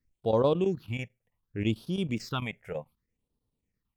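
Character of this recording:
phaser sweep stages 6, 0.66 Hz, lowest notch 280–2,100 Hz
chopped level 9.1 Hz, depth 65%, duty 85%

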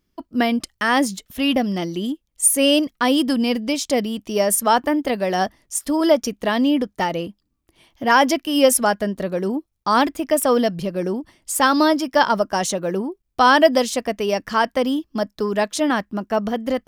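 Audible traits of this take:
background noise floor −72 dBFS
spectral slope −3.0 dB per octave

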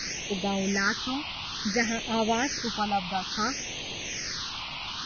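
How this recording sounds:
a quantiser's noise floor 6 bits, dither triangular
phaser sweep stages 6, 0.58 Hz, lowest notch 440–1,500 Hz
Ogg Vorbis

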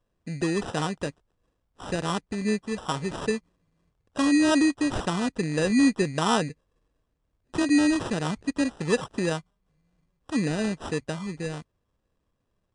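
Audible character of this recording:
aliases and images of a low sample rate 2,200 Hz, jitter 0%
MP3

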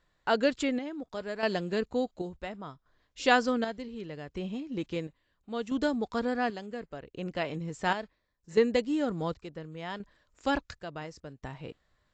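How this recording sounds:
chopped level 0.7 Hz, depth 60%, duty 55%
AAC

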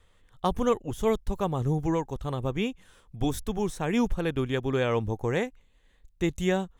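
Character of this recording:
background noise floor −62 dBFS
spectral slope −6.0 dB per octave

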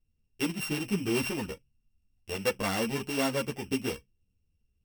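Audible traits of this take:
a buzz of ramps at a fixed pitch in blocks of 16 samples
a shimmering, thickened sound

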